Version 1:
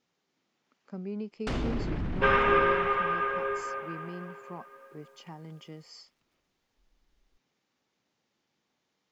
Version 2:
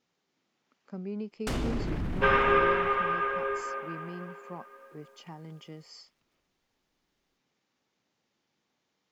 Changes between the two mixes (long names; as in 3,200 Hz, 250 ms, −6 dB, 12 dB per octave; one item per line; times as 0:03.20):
first sound: remove low-pass filter 4,700 Hz 12 dB per octave
second sound: add Butterworth high-pass 190 Hz 48 dB per octave